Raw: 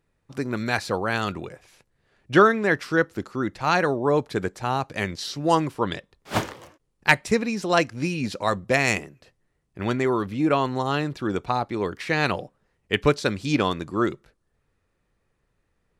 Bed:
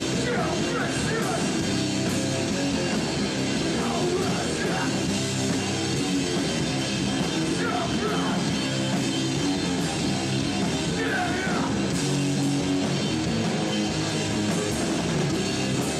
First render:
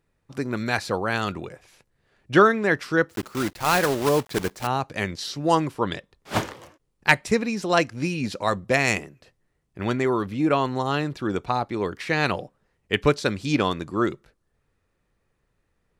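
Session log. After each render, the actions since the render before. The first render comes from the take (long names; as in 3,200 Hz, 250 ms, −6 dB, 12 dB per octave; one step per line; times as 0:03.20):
0:03.09–0:04.69: one scale factor per block 3 bits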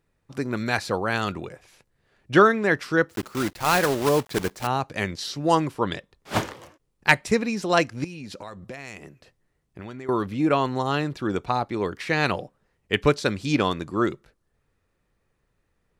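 0:08.04–0:10.09: downward compressor 8 to 1, threshold −34 dBFS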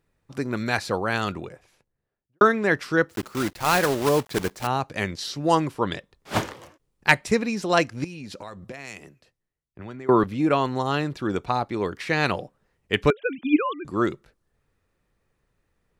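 0:01.23–0:02.41: fade out and dull
0:08.72–0:10.24: multiband upward and downward expander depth 70%
0:13.10–0:13.85: three sine waves on the formant tracks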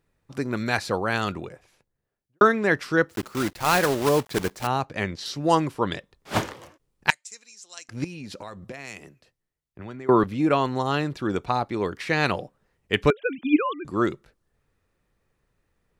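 0:04.85–0:05.26: low-pass filter 3,800 Hz 6 dB per octave
0:07.10–0:07.89: resonant band-pass 7,100 Hz, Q 3.5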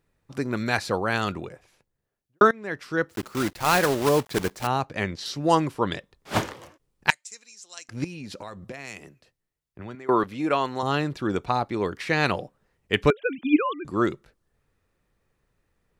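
0:02.51–0:03.34: fade in, from −21 dB
0:09.95–0:10.83: low-shelf EQ 270 Hz −11 dB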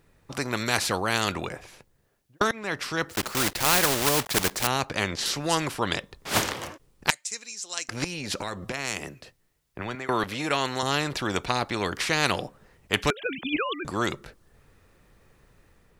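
automatic gain control gain up to 3 dB
every bin compressed towards the loudest bin 2 to 1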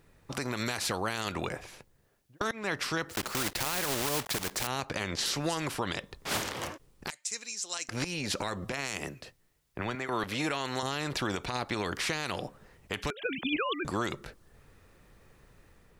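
downward compressor 5 to 1, threshold −26 dBFS, peak gain reduction 10 dB
brickwall limiter −20 dBFS, peak gain reduction 10.5 dB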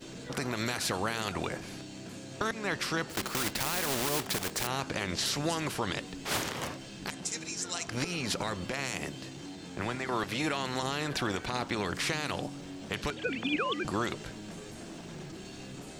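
mix in bed −19 dB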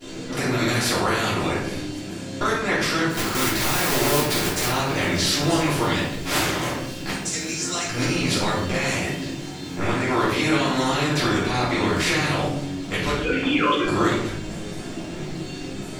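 delay with a high-pass on its return 556 ms, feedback 84%, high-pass 4,000 Hz, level −22 dB
rectangular room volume 170 cubic metres, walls mixed, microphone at 3.1 metres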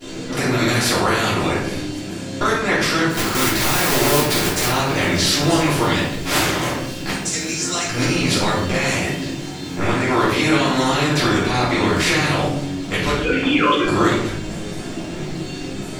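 level +4 dB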